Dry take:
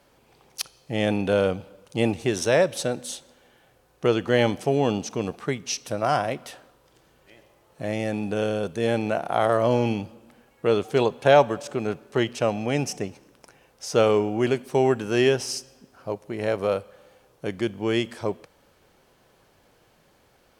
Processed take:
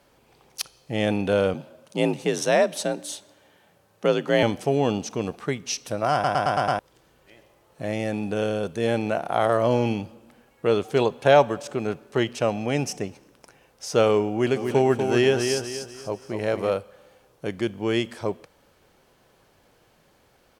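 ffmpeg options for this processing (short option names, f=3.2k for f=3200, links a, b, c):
-filter_complex "[0:a]asettb=1/sr,asplit=3[a][b][c];[a]atrim=end=1.544[d];[b]atrim=start=1.54:end=4.43,asetpts=PTS-STARTPTS,afade=t=in:d=0.004:c=qsin,afade=t=out:st=2.886:d=0.004:c=qsin,afreqshift=49[e];[c]atrim=start=4.426[f];[d][e]acrossfade=d=0.004:c1=hsin:c2=qsin[g];[g][f]acrossfade=d=0.004:c1=qsin:c2=hsin,asplit=3[h][i][j];[h]afade=t=out:st=14.55:d=0.02[k];[i]aecho=1:1:243|486|729|972:0.501|0.175|0.0614|0.0215,afade=t=in:st=14.55:d=0.02,afade=t=out:st=16.69:d=0.02[l];[j]afade=t=in:st=16.69:d=0.02[m];[k][l][m]amix=inputs=3:normalize=0,asplit=7[n][o][p][q][r][s][t];[n]atrim=end=6.242[u];[o]atrim=start=6.128:end=6.242[v];[p]atrim=start=6.128:end=6.242[w];[q]atrim=start=6.128:end=6.242[x];[r]atrim=start=6.128:end=6.242[y];[s]atrim=start=6.128:end=6.242[z];[t]atrim=start=6.788[aa];[u][v]acrossfade=d=0.004:c1=hsin:c2=hsin[ab];[ab][w]acrossfade=d=0.004:c1=hsin:c2=hsin[ac];[ac][x]acrossfade=d=0.004:c1=hsin:c2=hsin[ad];[ad][y]acrossfade=d=0.004:c1=hsin:c2=hsin[ae];[ae][z]acrossfade=d=0.004:c1=hsin:c2=hsin[af];[af][aa]acrossfade=d=0.004:c1=hsin:c2=hsin"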